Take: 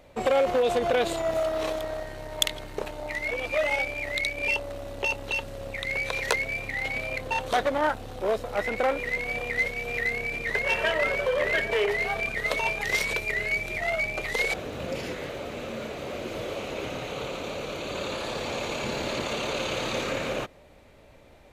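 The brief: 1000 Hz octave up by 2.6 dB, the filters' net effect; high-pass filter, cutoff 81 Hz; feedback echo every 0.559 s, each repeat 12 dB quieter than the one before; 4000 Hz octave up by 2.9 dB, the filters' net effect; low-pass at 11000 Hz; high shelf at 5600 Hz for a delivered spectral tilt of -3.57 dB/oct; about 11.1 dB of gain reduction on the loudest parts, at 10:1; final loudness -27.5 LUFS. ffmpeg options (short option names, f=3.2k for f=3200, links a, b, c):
-af "highpass=81,lowpass=11k,equalizer=f=1k:t=o:g=3.5,equalizer=f=4k:t=o:g=5.5,highshelf=f=5.6k:g=-6,acompressor=threshold=-30dB:ratio=10,aecho=1:1:559|1118|1677:0.251|0.0628|0.0157,volume=5.5dB"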